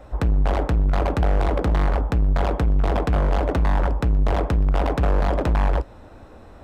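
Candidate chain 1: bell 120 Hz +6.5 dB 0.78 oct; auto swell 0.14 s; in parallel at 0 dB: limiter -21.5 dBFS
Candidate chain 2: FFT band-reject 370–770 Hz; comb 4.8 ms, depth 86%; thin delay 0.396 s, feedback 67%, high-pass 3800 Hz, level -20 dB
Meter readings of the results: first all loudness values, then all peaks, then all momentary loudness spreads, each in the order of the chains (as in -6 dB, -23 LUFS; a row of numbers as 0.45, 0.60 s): -18.5, -20.5 LUFS; -8.0, -7.5 dBFS; 3, 1 LU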